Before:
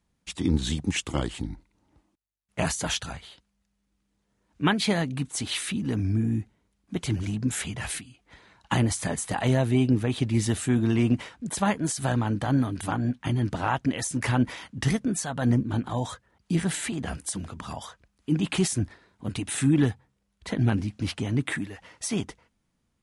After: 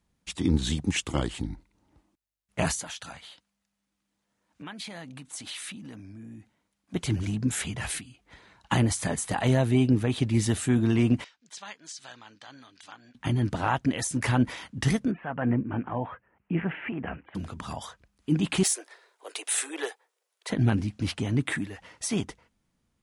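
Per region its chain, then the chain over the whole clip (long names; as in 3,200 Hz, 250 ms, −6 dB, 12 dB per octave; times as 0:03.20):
0:02.80–0:06.94: parametric band 410 Hz −8 dB 0.3 octaves + downward compressor 10 to 1, threshold −34 dBFS + high-pass filter 310 Hz 6 dB per octave
0:11.24–0:13.15: low-pass filter 5,600 Hz 24 dB per octave + first difference
0:15.11–0:17.35: Butterworth low-pass 2,800 Hz 72 dB per octave + low-shelf EQ 110 Hz −11.5 dB
0:18.63–0:20.50: Butterworth high-pass 400 Hz 48 dB per octave + hard clipping −22 dBFS + high-shelf EQ 6,400 Hz +7 dB
whole clip: no processing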